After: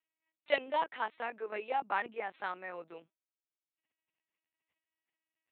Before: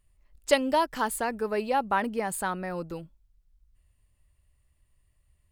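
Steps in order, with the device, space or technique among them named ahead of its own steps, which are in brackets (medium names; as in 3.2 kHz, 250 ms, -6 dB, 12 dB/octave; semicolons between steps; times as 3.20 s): talking toy (LPC vocoder at 8 kHz pitch kept; high-pass 430 Hz 12 dB/octave; peaking EQ 2.3 kHz +7 dB 0.58 oct); trim -7 dB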